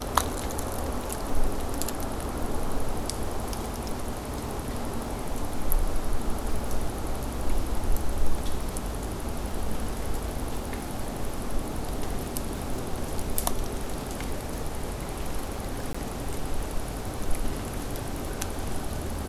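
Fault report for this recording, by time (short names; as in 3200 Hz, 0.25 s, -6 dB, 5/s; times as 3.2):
crackle 30/s -33 dBFS
15.93–15.95 gap 15 ms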